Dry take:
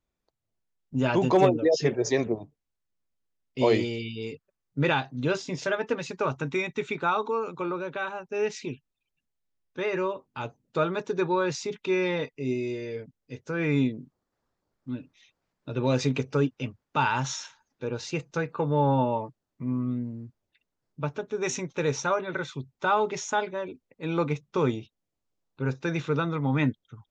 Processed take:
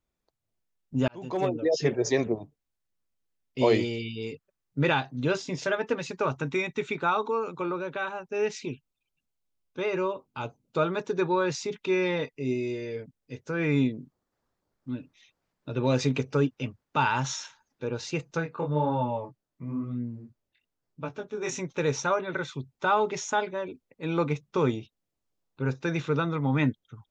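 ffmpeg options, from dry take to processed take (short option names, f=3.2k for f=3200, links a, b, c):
-filter_complex "[0:a]asettb=1/sr,asplit=3[a][b][c];[a]atrim=end=8.574[d];[b]atrim=start=8.57:end=10.86,asetpts=PTS-STARTPTS,afade=t=in:d=0.004:c=qsin,afade=t=out:st=2.286:d=0.004:c=qsin,bandreject=f=1.8k:w=5.2[e];[c]atrim=start=10.856[f];[d][e]acrossfade=d=0.004:c1=hsin:c2=qsin[g];[g][f]acrossfade=d=0.004:c1=qsin:c2=hsin,asplit=3[h][i][j];[h]afade=t=out:st=18.39:d=0.02[k];[i]flanger=delay=17:depth=7.5:speed=1,afade=t=in:st=18.39:d=0.02,afade=t=out:st=21.58:d=0.02[l];[j]afade=t=in:st=21.58:d=0.02[m];[k][l][m]amix=inputs=3:normalize=0,asplit=2[n][o];[n]atrim=end=1.08,asetpts=PTS-STARTPTS,afade=t=out:st=1.076:d=0.004:c=hsin[p];[o]atrim=start=1.08,asetpts=PTS-STARTPTS,afade=t=in:d=0.84[q];[p][q]concat=n=2:v=0:a=1"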